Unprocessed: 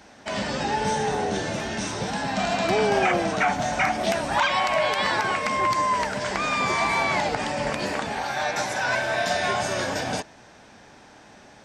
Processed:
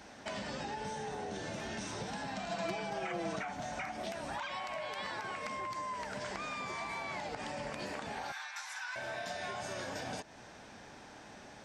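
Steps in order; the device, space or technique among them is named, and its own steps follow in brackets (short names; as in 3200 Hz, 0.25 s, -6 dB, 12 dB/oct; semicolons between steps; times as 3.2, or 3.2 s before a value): serial compression, peaks first (compressor, threshold -30 dBFS, peak gain reduction 12 dB; compressor 1.5:1, threshold -42 dBFS, peak gain reduction 5 dB); 2.49–3.39 comb 6 ms, depth 86%; 8.32–8.96 steep high-pass 950 Hz 36 dB/oct; gain -3 dB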